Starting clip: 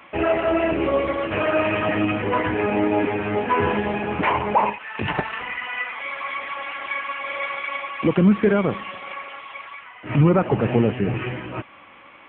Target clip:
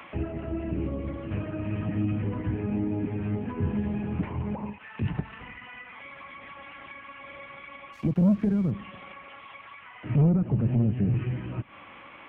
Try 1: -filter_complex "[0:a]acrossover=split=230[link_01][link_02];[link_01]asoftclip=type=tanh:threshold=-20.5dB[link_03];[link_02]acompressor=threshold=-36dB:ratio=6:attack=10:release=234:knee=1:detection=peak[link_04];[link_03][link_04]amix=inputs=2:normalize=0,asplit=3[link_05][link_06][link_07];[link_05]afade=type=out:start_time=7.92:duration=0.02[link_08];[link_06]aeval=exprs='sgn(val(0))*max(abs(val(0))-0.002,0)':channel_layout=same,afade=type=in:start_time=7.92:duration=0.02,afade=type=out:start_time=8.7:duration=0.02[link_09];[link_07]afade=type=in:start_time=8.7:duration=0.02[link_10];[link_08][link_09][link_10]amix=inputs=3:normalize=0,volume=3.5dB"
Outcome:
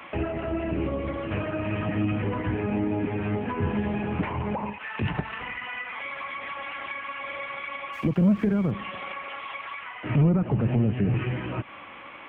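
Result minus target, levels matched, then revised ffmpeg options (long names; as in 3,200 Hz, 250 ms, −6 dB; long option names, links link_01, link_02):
downward compressor: peak gain reduction −9.5 dB
-filter_complex "[0:a]acrossover=split=230[link_01][link_02];[link_01]asoftclip=type=tanh:threshold=-20.5dB[link_03];[link_02]acompressor=threshold=-47.5dB:ratio=6:attack=10:release=234:knee=1:detection=peak[link_04];[link_03][link_04]amix=inputs=2:normalize=0,asplit=3[link_05][link_06][link_07];[link_05]afade=type=out:start_time=7.92:duration=0.02[link_08];[link_06]aeval=exprs='sgn(val(0))*max(abs(val(0))-0.002,0)':channel_layout=same,afade=type=in:start_time=7.92:duration=0.02,afade=type=out:start_time=8.7:duration=0.02[link_09];[link_07]afade=type=in:start_time=8.7:duration=0.02[link_10];[link_08][link_09][link_10]amix=inputs=3:normalize=0,volume=3.5dB"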